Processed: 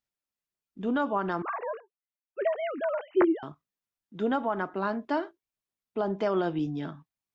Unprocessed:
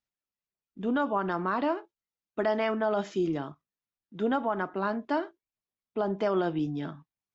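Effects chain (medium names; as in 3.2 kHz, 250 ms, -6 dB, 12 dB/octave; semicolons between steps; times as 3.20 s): 1.42–3.43 s: formants replaced by sine waves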